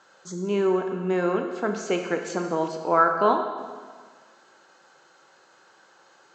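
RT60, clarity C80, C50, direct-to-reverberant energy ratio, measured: 1.6 s, 7.5 dB, 6.0 dB, 4.5 dB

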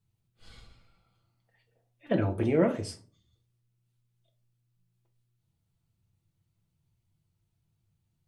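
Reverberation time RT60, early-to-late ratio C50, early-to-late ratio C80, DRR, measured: 0.40 s, 14.5 dB, 20.5 dB, 3.5 dB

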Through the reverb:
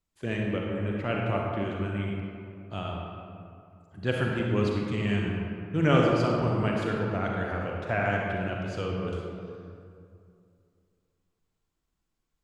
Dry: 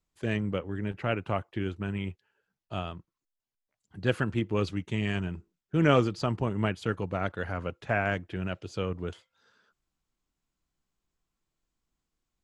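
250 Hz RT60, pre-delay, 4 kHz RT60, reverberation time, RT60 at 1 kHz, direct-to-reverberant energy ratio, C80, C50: 2.7 s, 34 ms, 1.3 s, 2.5 s, 2.4 s, −1.5 dB, 1.0 dB, −0.5 dB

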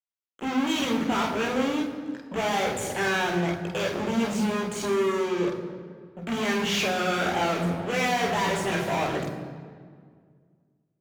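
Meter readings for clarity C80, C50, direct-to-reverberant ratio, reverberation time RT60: 8.5 dB, 7.0 dB, −2.0 dB, 1.9 s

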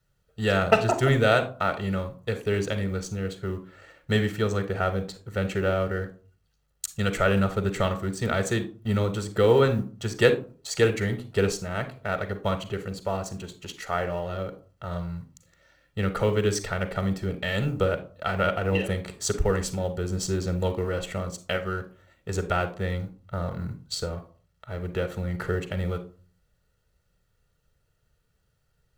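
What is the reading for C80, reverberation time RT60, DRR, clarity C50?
18.0 dB, 0.40 s, 10.0 dB, 12.5 dB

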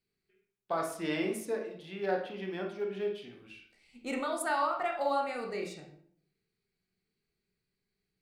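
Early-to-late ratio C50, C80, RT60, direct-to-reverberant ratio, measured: 5.5 dB, 10.0 dB, 0.60 s, 1.5 dB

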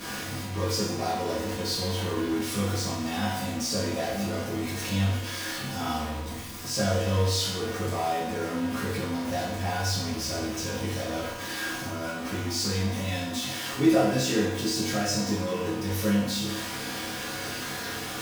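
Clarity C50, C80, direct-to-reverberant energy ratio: 2.0 dB, 4.5 dB, −10.0 dB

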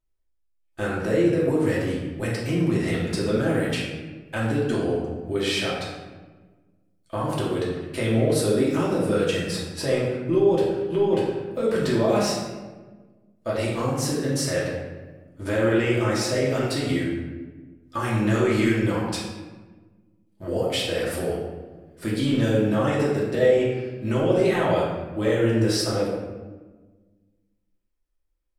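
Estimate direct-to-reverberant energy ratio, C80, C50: −7.0 dB, 3.5 dB, 0.5 dB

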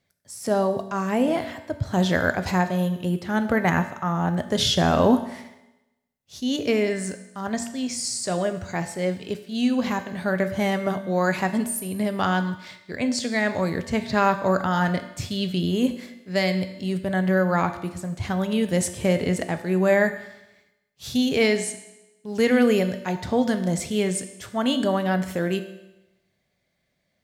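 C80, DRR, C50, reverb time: 13.0 dB, 8.0 dB, 11.0 dB, 0.95 s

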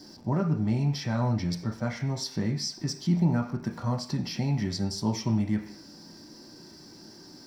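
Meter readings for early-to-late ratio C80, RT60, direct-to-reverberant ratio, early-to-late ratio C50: 15.5 dB, 0.45 s, 1.5 dB, 11.0 dB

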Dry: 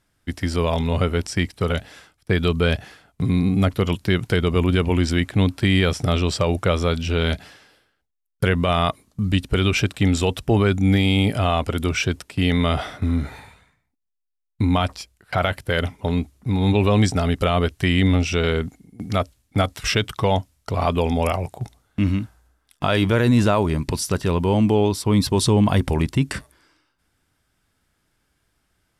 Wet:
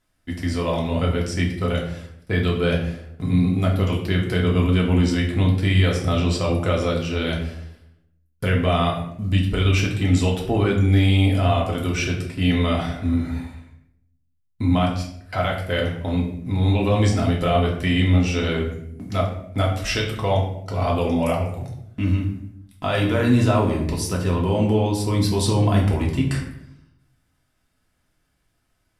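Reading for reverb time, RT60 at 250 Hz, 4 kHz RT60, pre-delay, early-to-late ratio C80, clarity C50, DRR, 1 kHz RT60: 0.70 s, 0.95 s, 0.50 s, 3 ms, 9.0 dB, 6.5 dB, −2.5 dB, 0.60 s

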